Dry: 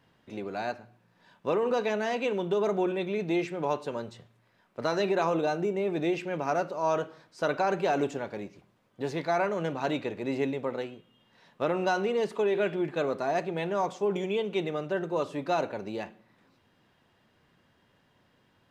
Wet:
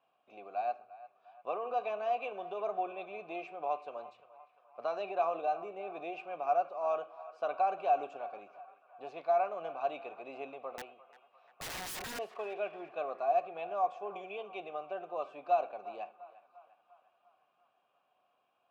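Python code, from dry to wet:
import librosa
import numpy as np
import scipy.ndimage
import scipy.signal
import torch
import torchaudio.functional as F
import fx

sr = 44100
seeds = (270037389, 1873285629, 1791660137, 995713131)

p1 = fx.vowel_filter(x, sr, vowel='a')
p2 = fx.low_shelf(p1, sr, hz=420.0, db=-5.0)
p3 = fx.overflow_wrap(p2, sr, gain_db=40.5, at=(10.77, 12.19))
p4 = p3 + fx.echo_banded(p3, sr, ms=348, feedback_pct=65, hz=1300.0, wet_db=-15, dry=0)
y = p4 * librosa.db_to_amplitude(4.0)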